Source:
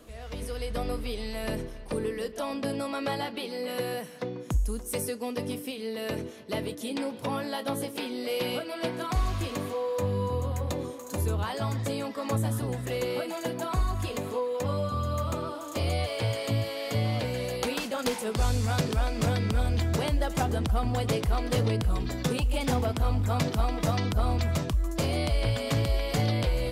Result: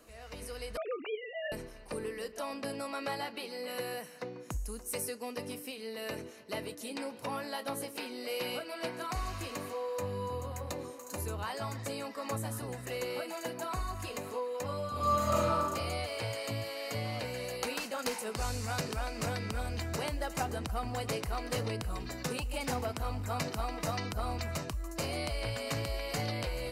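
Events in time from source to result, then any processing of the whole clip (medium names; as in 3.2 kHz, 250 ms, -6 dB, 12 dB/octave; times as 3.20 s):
0.77–1.52 s: formants replaced by sine waves
14.91–15.57 s: reverb throw, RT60 1.4 s, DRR -8 dB
whole clip: bass shelf 460 Hz -9 dB; band-stop 3.4 kHz, Q 5.3; trim -2.5 dB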